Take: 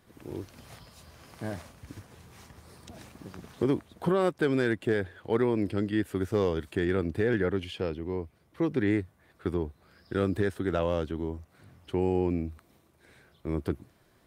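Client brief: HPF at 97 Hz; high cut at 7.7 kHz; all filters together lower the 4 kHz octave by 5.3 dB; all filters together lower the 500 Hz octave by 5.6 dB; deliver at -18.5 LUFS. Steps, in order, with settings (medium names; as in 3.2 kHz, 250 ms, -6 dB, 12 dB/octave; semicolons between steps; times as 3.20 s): high-pass 97 Hz; low-pass 7.7 kHz; peaking EQ 500 Hz -7.5 dB; peaking EQ 4 kHz -7 dB; trim +15 dB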